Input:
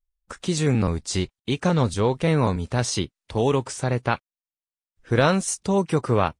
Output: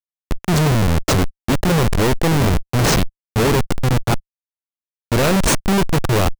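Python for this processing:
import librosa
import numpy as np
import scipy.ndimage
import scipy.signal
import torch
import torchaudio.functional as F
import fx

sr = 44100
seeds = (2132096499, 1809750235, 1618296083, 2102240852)

y = fx.schmitt(x, sr, flips_db=-24.0)
y = fx.leveller(y, sr, passes=5)
y = y * librosa.db_to_amplitude(4.0)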